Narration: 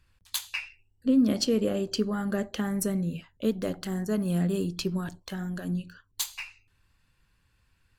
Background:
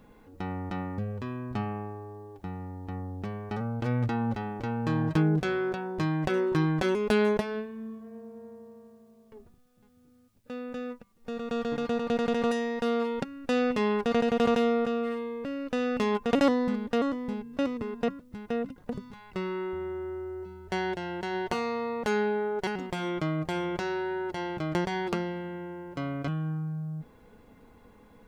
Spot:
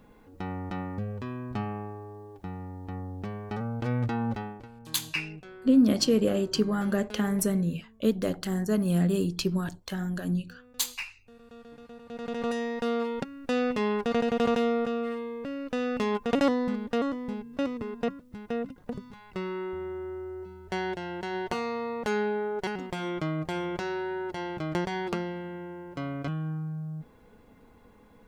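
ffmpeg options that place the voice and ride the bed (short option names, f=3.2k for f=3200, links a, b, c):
-filter_complex "[0:a]adelay=4600,volume=2dB[a];[1:a]volume=16.5dB,afade=t=out:st=4.38:d=0.3:silence=0.133352,afade=t=in:st=12.06:d=0.56:silence=0.141254[b];[a][b]amix=inputs=2:normalize=0"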